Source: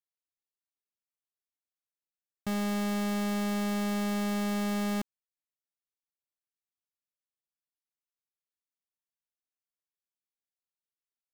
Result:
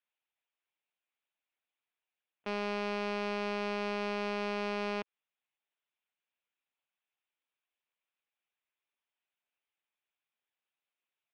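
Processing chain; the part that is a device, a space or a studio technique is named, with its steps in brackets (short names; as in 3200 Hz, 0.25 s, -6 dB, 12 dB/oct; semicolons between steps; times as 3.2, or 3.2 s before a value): talking toy (LPC vocoder at 8 kHz pitch kept; HPF 370 Hz 12 dB/oct; bell 2500 Hz +6 dB 0.35 oct; soft clip -31.5 dBFS, distortion -12 dB); gain +7.5 dB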